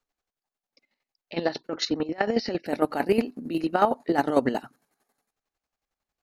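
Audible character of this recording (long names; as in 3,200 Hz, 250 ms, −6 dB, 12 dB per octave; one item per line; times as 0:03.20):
chopped level 11 Hz, depth 65%, duty 35%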